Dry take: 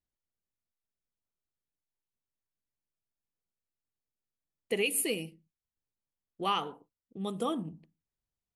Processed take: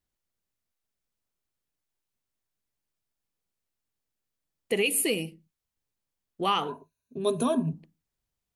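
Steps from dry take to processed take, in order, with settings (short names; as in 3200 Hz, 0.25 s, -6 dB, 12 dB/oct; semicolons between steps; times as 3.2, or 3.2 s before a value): in parallel at 0 dB: limiter -24 dBFS, peak gain reduction 7.5 dB; 6.68–7.73 on the sum: ripple EQ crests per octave 1.5, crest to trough 17 dB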